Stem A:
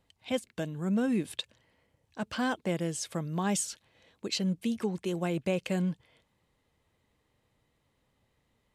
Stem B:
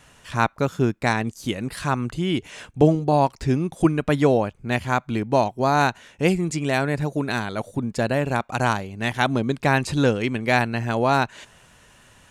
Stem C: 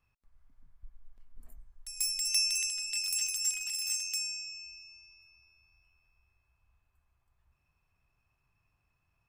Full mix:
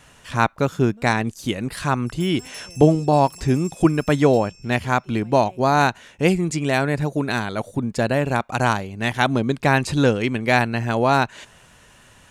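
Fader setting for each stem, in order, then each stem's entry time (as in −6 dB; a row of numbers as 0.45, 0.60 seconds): −18.5, +2.0, −11.5 decibels; 0.00, 0.00, 0.20 seconds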